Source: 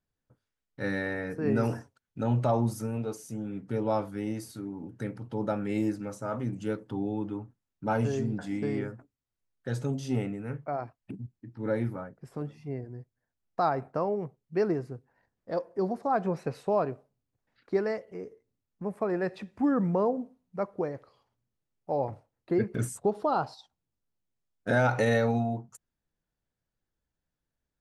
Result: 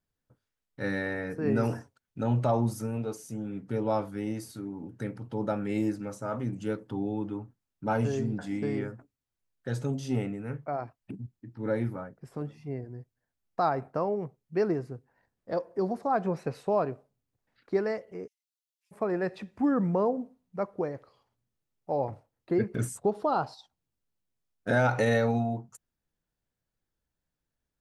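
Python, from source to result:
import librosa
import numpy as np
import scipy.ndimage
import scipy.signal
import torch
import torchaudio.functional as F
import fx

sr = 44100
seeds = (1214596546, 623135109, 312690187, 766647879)

y = fx.band_squash(x, sr, depth_pct=40, at=(15.52, 16.04))
y = fx.steep_highpass(y, sr, hz=2900.0, slope=36, at=(18.26, 18.91), fade=0.02)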